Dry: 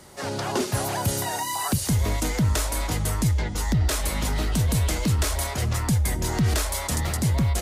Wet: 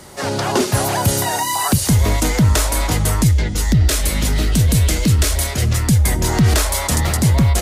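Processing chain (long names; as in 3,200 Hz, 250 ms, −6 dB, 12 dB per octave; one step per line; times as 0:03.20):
0:03.24–0:05.99: parametric band 930 Hz −8.5 dB 1.2 octaves
level +8.5 dB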